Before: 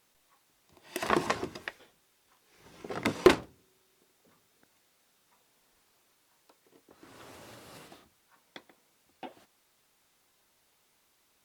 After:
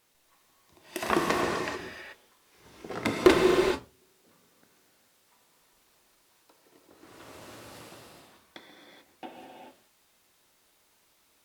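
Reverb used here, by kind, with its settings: non-linear reverb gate 0.46 s flat, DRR -1 dB

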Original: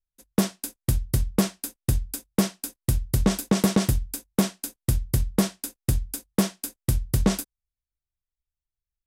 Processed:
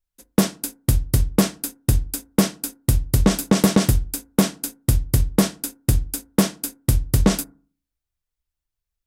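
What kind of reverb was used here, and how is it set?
FDN reverb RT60 0.41 s, low-frequency decay 1.25×, high-frequency decay 0.3×, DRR 15 dB; gain +5 dB

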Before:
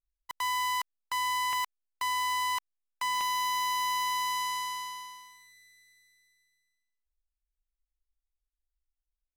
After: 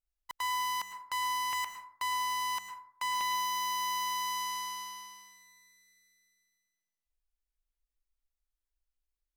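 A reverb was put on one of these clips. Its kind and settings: plate-style reverb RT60 0.58 s, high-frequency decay 0.45×, pre-delay 95 ms, DRR 6.5 dB; gain -2.5 dB

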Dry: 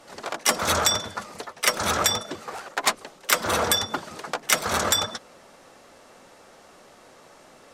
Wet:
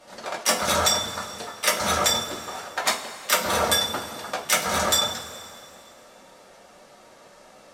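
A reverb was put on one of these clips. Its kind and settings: two-slope reverb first 0.24 s, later 2.5 s, from -18 dB, DRR -2.5 dB; gain -4 dB

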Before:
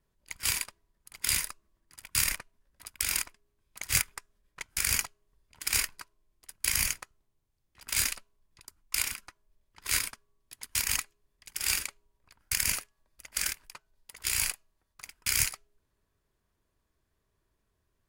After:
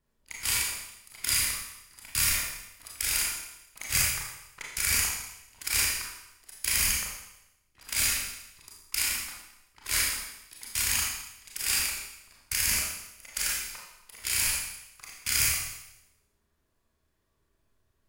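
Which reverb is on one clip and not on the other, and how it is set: Schroeder reverb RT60 0.88 s, combs from 27 ms, DRR -3.5 dB; gain -2 dB

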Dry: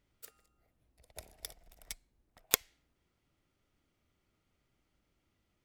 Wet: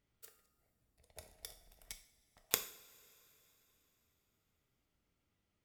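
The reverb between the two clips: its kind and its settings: two-slope reverb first 0.51 s, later 3.8 s, from -20 dB, DRR 7 dB; gain -5.5 dB

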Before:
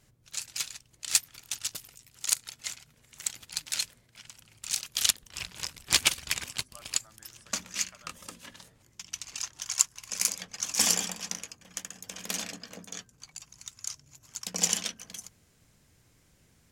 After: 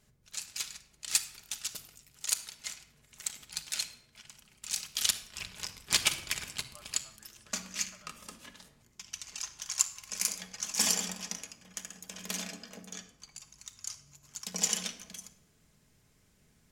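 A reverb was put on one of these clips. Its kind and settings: shoebox room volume 2800 m³, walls furnished, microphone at 1.4 m; gain -4 dB

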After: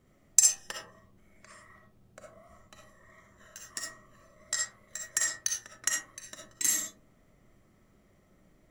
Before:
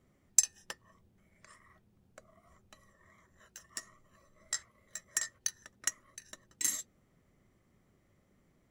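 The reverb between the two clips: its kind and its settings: digital reverb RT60 0.45 s, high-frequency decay 0.35×, pre-delay 20 ms, DRR -0.5 dB; gain +3 dB

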